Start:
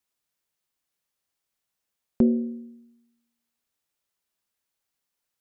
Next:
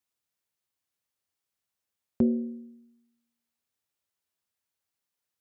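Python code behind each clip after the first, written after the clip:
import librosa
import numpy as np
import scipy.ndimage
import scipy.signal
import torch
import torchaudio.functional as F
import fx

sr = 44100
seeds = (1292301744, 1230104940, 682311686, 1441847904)

y = scipy.signal.sosfilt(scipy.signal.butter(2, 59.0, 'highpass', fs=sr, output='sos'), x)
y = fx.peak_eq(y, sr, hz=90.0, db=7.5, octaves=0.4)
y = y * 10.0 ** (-4.0 / 20.0)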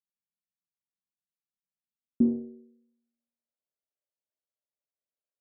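y = fx.cheby_harmonics(x, sr, harmonics=(6, 7), levels_db=(-18, -22), full_scale_db=-13.5)
y = fx.low_shelf(y, sr, hz=77.0, db=-10.5)
y = fx.filter_sweep_lowpass(y, sr, from_hz=190.0, to_hz=590.0, start_s=1.77, end_s=3.08, q=4.7)
y = y * 10.0 ** (-6.5 / 20.0)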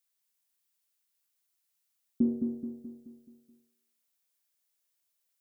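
y = fx.dmg_noise_colour(x, sr, seeds[0], colour='blue', level_db=-77.0)
y = fx.echo_feedback(y, sr, ms=214, feedback_pct=49, wet_db=-5.0)
y = y * 10.0 ** (-3.5 / 20.0)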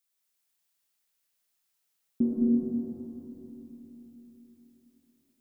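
y = fx.rev_freeverb(x, sr, rt60_s=4.1, hf_ratio=0.55, predelay_ms=65, drr_db=-3.0)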